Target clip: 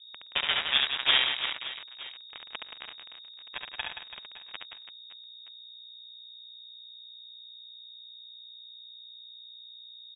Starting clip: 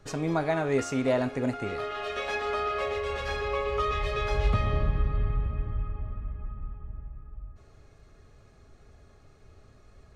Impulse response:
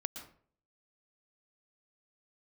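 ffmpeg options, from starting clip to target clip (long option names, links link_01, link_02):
-filter_complex "[0:a]highpass=frequency=190:width=0.5412,highpass=frequency=190:width=1.3066,aeval=exprs='0.188*(cos(1*acos(clip(val(0)/0.188,-1,1)))-cos(1*PI/2))+0.075*(cos(3*acos(clip(val(0)/0.188,-1,1)))-cos(3*PI/2))+0.00211*(cos(5*acos(clip(val(0)/0.188,-1,1)))-cos(5*PI/2))+0.00668*(cos(7*acos(clip(val(0)/0.188,-1,1)))-cos(7*PI/2))+0.00266*(cos(8*acos(clip(val(0)/0.188,-1,1)))-cos(8*PI/2))':channel_layout=same,aeval=exprs='sgn(val(0))*max(abs(val(0))-0.0133,0)':channel_layout=same,aeval=exprs='val(0)+0.000631*(sin(2*PI*60*n/s)+sin(2*PI*2*60*n/s)/2+sin(2*PI*3*60*n/s)/3+sin(2*PI*4*60*n/s)/4+sin(2*PI*5*60*n/s)/5)':channel_layout=same,aeval=exprs='0.251*sin(PI/2*3.55*val(0)/0.251)':channel_layout=same,asplit=2[link_01][link_02];[link_02]aecho=0:1:70|175|332.5|568.8|923.1:0.631|0.398|0.251|0.158|0.1[link_03];[link_01][link_03]amix=inputs=2:normalize=0,lowpass=frequency=3200:width_type=q:width=0.5098,lowpass=frequency=3200:width_type=q:width=0.6013,lowpass=frequency=3200:width_type=q:width=0.9,lowpass=frequency=3200:width_type=q:width=2.563,afreqshift=-3800"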